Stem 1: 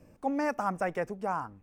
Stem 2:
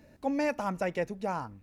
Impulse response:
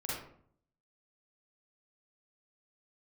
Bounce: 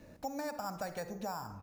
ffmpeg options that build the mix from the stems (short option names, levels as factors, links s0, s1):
-filter_complex "[0:a]acrusher=samples=7:mix=1:aa=0.000001,volume=0.75,asplit=3[s0][s1][s2];[s1]volume=0.266[s3];[1:a]adelay=0.9,volume=0.944[s4];[s2]apad=whole_len=71760[s5];[s4][s5]sidechaincompress=threshold=0.0112:ratio=8:attack=16:release=149[s6];[2:a]atrim=start_sample=2205[s7];[s3][s7]afir=irnorm=-1:irlink=0[s8];[s0][s6][s8]amix=inputs=3:normalize=0,acompressor=threshold=0.0141:ratio=4"